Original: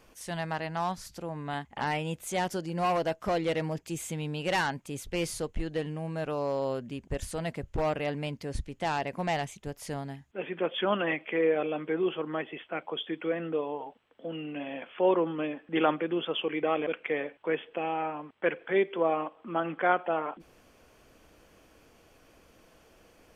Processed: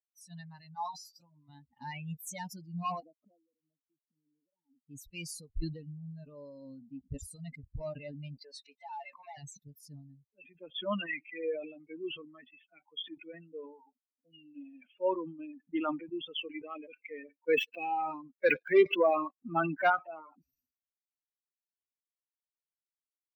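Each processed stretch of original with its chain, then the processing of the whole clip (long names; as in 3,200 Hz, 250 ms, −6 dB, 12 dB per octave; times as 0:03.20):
0:00.75–0:01.49: low-shelf EQ 210 Hz −11.5 dB + double-tracking delay 13 ms −6 dB + one half of a high-frequency compander encoder only
0:03.00–0:04.89: flat-topped band-pass 360 Hz, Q 0.94 + downward compressor 8 to 1, threshold −41 dBFS
0:08.42–0:09.38: high-pass filter 530 Hz + mid-hump overdrive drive 20 dB, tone 2,300 Hz, clips at −17.5 dBFS + downward compressor 3 to 1, threshold −29 dBFS
0:17.48–0:19.90: high-pass filter 49 Hz 6 dB per octave + high-shelf EQ 6,400 Hz −9 dB + leveller curve on the samples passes 2
whole clip: spectral dynamics exaggerated over time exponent 3; notch filter 760 Hz, Q 13; level that may fall only so fast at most 84 dB per second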